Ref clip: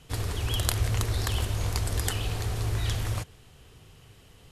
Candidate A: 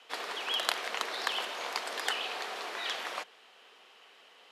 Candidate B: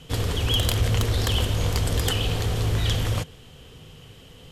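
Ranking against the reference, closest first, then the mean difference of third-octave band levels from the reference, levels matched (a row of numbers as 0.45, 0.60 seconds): B, A; 2.0, 10.0 decibels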